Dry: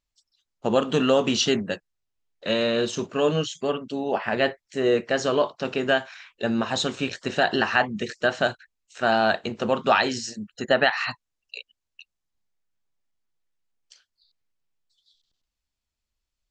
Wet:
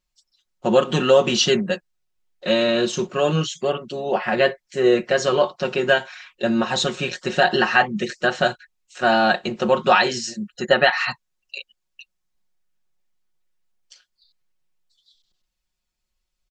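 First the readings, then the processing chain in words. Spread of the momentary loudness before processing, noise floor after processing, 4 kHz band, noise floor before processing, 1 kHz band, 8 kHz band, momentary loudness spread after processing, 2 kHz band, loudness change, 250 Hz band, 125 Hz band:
12 LU, -78 dBFS, +4.0 dB, -84 dBFS, +4.5 dB, +4.0 dB, 11 LU, +4.0 dB, +4.0 dB, +2.5 dB, +4.5 dB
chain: comb 5.5 ms, depth 80%; gain +2 dB

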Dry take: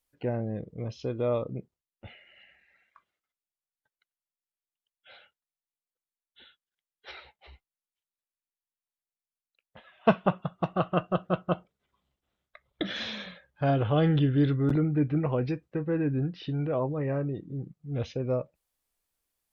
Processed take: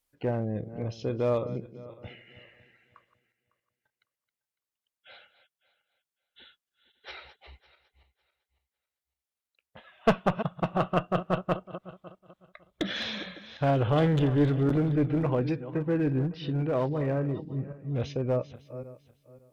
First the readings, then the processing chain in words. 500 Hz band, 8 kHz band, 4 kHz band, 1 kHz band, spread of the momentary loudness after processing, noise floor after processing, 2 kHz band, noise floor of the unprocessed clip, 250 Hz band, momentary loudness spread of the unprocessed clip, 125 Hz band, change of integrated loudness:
+1.0 dB, n/a, +1.5 dB, +1.0 dB, 19 LU, under -85 dBFS, +1.5 dB, under -85 dBFS, 0.0 dB, 14 LU, +0.5 dB, +0.5 dB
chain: regenerating reverse delay 0.277 s, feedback 45%, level -13.5 dB; one-sided clip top -25 dBFS; gain +1.5 dB

